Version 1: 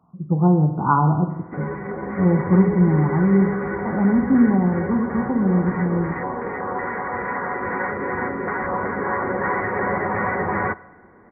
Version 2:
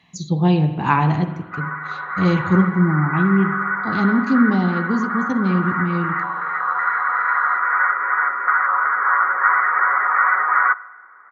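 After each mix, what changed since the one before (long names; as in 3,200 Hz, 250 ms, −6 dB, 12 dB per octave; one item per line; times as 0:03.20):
speech: remove linear-phase brick-wall low-pass 1,500 Hz
background: add high-pass with resonance 1,300 Hz, resonance Q 9.3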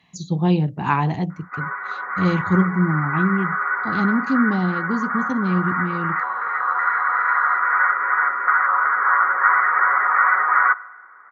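speech: send off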